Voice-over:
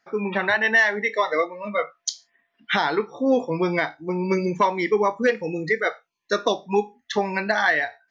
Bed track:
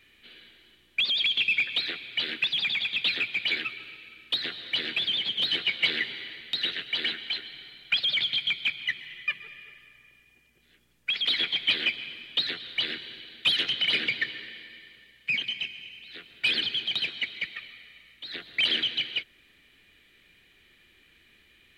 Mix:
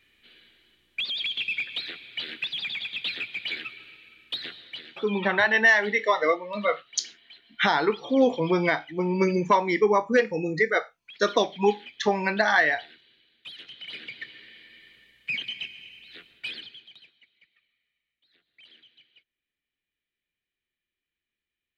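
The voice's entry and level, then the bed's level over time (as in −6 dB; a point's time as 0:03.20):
4.90 s, −0.5 dB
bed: 0:04.50 −4.5 dB
0:05.07 −19 dB
0:13.51 −19 dB
0:14.88 −2.5 dB
0:16.20 −2.5 dB
0:17.21 −29.5 dB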